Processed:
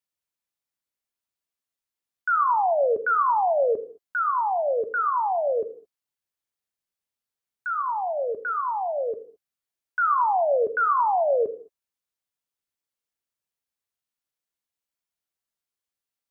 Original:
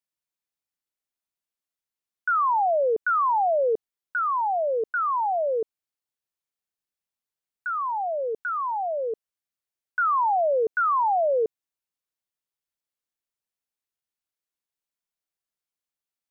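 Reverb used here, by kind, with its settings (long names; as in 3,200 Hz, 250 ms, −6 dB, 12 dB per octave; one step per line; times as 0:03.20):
reverb whose tail is shaped and stops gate 240 ms falling, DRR 8 dB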